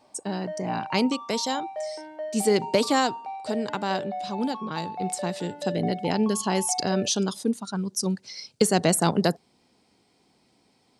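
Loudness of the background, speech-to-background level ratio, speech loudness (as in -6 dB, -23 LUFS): -36.0 LUFS, 9.5 dB, -26.5 LUFS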